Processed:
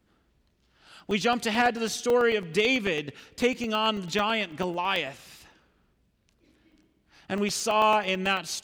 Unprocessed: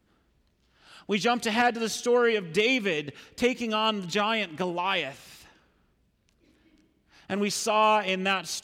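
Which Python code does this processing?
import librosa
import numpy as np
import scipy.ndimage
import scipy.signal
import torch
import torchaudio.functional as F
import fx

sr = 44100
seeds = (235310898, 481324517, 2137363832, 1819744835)

y = fx.buffer_crackle(x, sr, first_s=0.45, period_s=0.11, block=64, kind='zero')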